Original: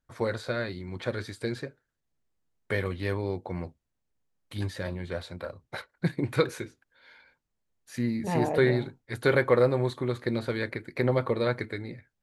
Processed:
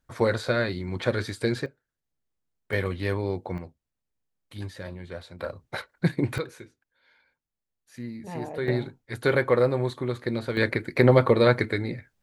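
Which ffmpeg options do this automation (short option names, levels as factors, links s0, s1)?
-af "asetnsamples=n=441:p=0,asendcmd='1.66 volume volume -4dB;2.73 volume volume 2.5dB;3.58 volume volume -4dB;5.39 volume volume 4dB;6.38 volume volume -8dB;8.68 volume volume 0.5dB;10.57 volume volume 8dB',volume=2"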